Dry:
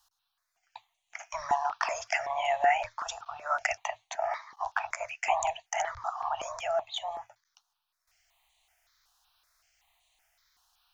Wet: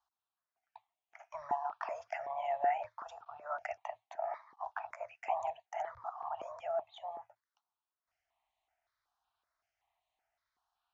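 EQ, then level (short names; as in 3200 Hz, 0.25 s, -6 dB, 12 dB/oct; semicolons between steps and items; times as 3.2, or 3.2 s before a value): band-pass 360 Hz, Q 0.72; -3.0 dB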